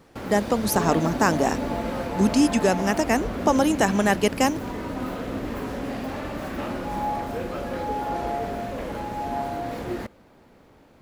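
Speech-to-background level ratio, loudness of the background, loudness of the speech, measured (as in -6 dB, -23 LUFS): 7.5 dB, -30.0 LUFS, -22.5 LUFS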